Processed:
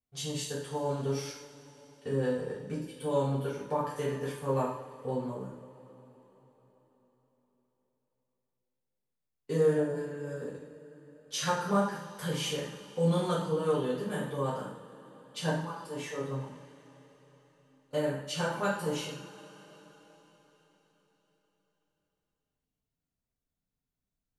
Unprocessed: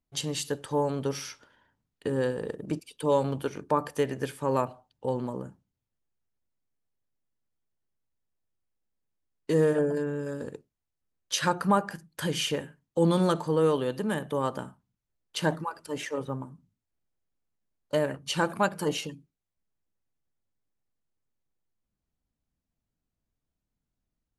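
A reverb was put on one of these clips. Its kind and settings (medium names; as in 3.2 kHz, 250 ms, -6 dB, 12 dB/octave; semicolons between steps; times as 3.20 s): two-slope reverb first 0.58 s, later 4.6 s, from -21 dB, DRR -9 dB; trim -13.5 dB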